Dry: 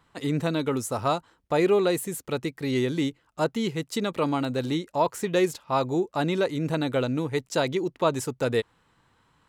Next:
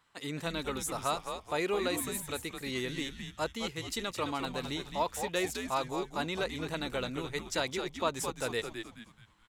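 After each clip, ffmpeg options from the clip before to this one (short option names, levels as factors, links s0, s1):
-filter_complex "[0:a]tiltshelf=f=760:g=-6,asplit=5[s0][s1][s2][s3][s4];[s1]adelay=214,afreqshift=-110,volume=0.447[s5];[s2]adelay=428,afreqshift=-220,volume=0.166[s6];[s3]adelay=642,afreqshift=-330,volume=0.061[s7];[s4]adelay=856,afreqshift=-440,volume=0.0226[s8];[s0][s5][s6][s7][s8]amix=inputs=5:normalize=0,volume=0.398"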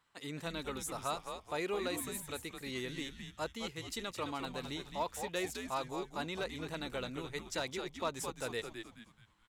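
-af "volume=11.9,asoftclip=hard,volume=0.0841,volume=0.562"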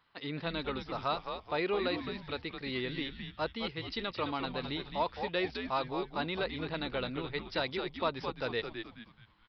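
-af "aresample=11025,aresample=44100,volume=1.68"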